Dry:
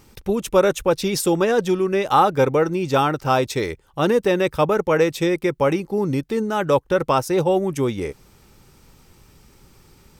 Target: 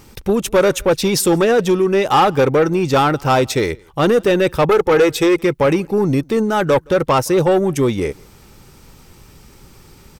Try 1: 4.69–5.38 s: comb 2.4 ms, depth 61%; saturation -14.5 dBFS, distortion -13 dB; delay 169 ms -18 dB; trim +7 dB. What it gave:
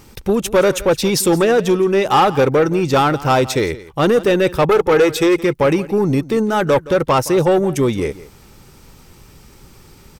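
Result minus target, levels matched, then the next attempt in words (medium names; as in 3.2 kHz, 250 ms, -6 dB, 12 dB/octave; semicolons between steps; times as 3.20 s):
echo-to-direct +10.5 dB
4.69–5.38 s: comb 2.4 ms, depth 61%; saturation -14.5 dBFS, distortion -13 dB; delay 169 ms -28.5 dB; trim +7 dB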